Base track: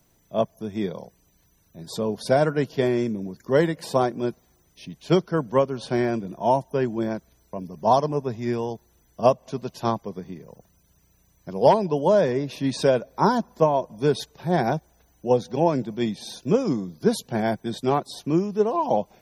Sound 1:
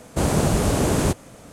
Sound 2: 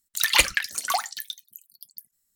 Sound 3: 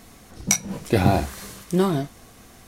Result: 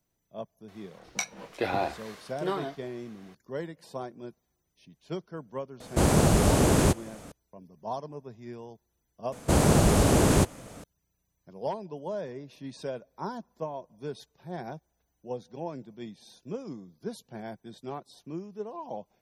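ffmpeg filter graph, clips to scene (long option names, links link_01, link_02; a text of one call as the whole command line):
ffmpeg -i bed.wav -i cue0.wav -i cue1.wav -i cue2.wav -filter_complex "[1:a]asplit=2[link_01][link_02];[0:a]volume=-16dB[link_03];[3:a]acrossover=split=370 4600:gain=0.141 1 0.178[link_04][link_05][link_06];[link_04][link_05][link_06]amix=inputs=3:normalize=0,atrim=end=2.67,asetpts=PTS-STARTPTS,volume=-5dB,afade=type=in:duration=0.004:curve=hsin,afade=type=out:start_time=2.666:duration=0.004:curve=hsin,adelay=680[link_07];[link_01]atrim=end=1.52,asetpts=PTS-STARTPTS,volume=-1.5dB,afade=type=in:duration=0.004:curve=hsin,afade=type=out:start_time=1.516:duration=0.004:curve=hsin,adelay=5800[link_08];[link_02]atrim=end=1.52,asetpts=PTS-STARTPTS,volume=-1dB,afade=type=in:duration=0.004:curve=hsin,afade=type=out:start_time=1.516:duration=0.004:curve=hsin,adelay=9320[link_09];[link_03][link_07][link_08][link_09]amix=inputs=4:normalize=0" out.wav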